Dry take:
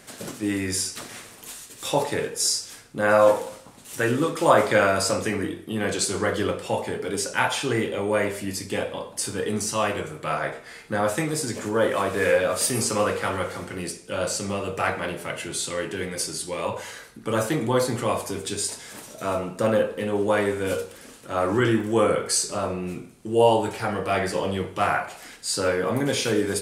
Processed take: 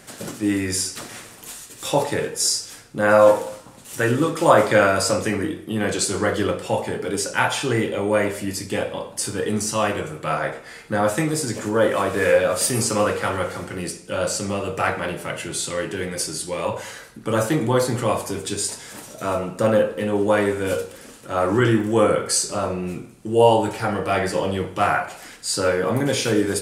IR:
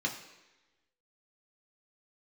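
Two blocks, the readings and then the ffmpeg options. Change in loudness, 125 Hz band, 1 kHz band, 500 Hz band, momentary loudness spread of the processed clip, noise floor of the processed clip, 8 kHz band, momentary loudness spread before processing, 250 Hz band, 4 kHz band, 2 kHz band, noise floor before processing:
+3.0 dB, +4.5 dB, +3.0 dB, +3.0 dB, 13 LU, -43 dBFS, +2.5 dB, 12 LU, +3.5 dB, +2.0 dB, +2.5 dB, -46 dBFS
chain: -filter_complex "[0:a]asplit=2[s0][s1];[1:a]atrim=start_sample=2205[s2];[s1][s2]afir=irnorm=-1:irlink=0,volume=0.112[s3];[s0][s3]amix=inputs=2:normalize=0,volume=1.41"

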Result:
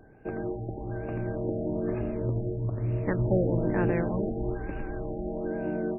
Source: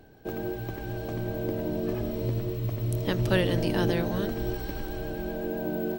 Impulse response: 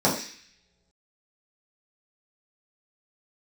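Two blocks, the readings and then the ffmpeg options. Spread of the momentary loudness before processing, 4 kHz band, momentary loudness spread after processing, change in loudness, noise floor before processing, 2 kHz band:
10 LU, under -30 dB, 10 LU, -0.5 dB, -38 dBFS, -4.5 dB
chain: -af "afftfilt=real='re*lt(b*sr/1024,810*pow(2900/810,0.5+0.5*sin(2*PI*1.1*pts/sr)))':imag='im*lt(b*sr/1024,810*pow(2900/810,0.5+0.5*sin(2*PI*1.1*pts/sr)))':win_size=1024:overlap=0.75"

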